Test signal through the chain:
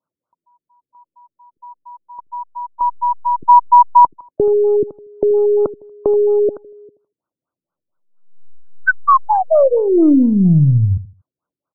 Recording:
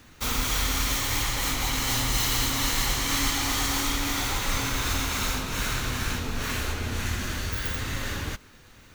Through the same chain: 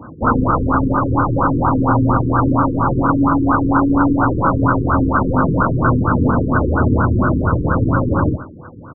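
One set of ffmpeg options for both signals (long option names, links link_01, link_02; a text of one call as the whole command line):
ffmpeg -i in.wav -filter_complex "[0:a]highpass=140,equalizer=frequency=220:width_type=q:width=4:gain=-6,equalizer=frequency=420:width_type=q:width=4:gain=-9,equalizer=frequency=770:width_type=q:width=4:gain=-7,equalizer=frequency=2100:width_type=q:width=4:gain=-7,lowpass=frequency=2700:width=0.5412,lowpass=frequency=2700:width=1.3066,aeval=exprs='0.0891*(cos(1*acos(clip(val(0)/0.0891,-1,1)))-cos(1*PI/2))+0.00562*(cos(2*acos(clip(val(0)/0.0891,-1,1)))-cos(2*PI/2))+0.000708*(cos(7*acos(clip(val(0)/0.0891,-1,1)))-cos(7*PI/2))+0.00282*(cos(8*acos(clip(val(0)/0.0891,-1,1)))-cos(8*PI/2))':channel_layout=same,asplit=2[link_01][link_02];[link_02]adelay=79,lowpass=frequency=1900:poles=1,volume=-15dB,asplit=2[link_03][link_04];[link_04]adelay=79,lowpass=frequency=1900:poles=1,volume=0.3,asplit=2[link_05][link_06];[link_06]adelay=79,lowpass=frequency=1900:poles=1,volume=0.3[link_07];[link_01][link_03][link_05][link_07]amix=inputs=4:normalize=0,alimiter=level_in=26dB:limit=-1dB:release=50:level=0:latency=1,afftfilt=real='re*lt(b*sr/1024,460*pow(1600/460,0.5+0.5*sin(2*PI*4.3*pts/sr)))':imag='im*lt(b*sr/1024,460*pow(1600/460,0.5+0.5*sin(2*PI*4.3*pts/sr)))':win_size=1024:overlap=0.75,volume=-1dB" out.wav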